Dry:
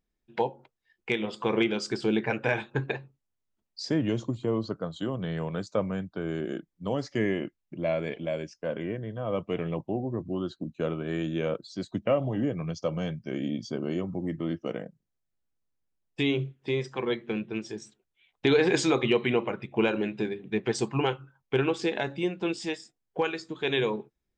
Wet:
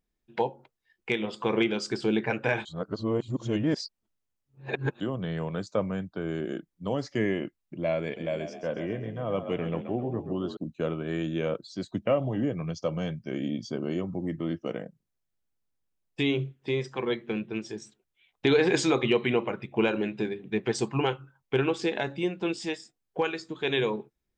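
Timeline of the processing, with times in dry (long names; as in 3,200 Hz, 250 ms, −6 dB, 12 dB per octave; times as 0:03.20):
0:02.65–0:05.00: reverse
0:08.03–0:10.57: echo with shifted repeats 131 ms, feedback 41%, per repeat +41 Hz, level −9 dB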